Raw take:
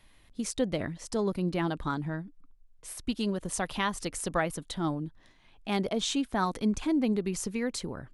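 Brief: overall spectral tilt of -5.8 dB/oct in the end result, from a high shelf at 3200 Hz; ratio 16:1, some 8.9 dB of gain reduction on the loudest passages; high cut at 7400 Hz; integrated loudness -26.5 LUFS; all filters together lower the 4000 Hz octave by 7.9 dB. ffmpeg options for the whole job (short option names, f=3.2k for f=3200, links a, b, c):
-af "lowpass=7.4k,highshelf=f=3.2k:g=-7.5,equalizer=f=4k:t=o:g=-4.5,acompressor=threshold=-32dB:ratio=16,volume=12.5dB"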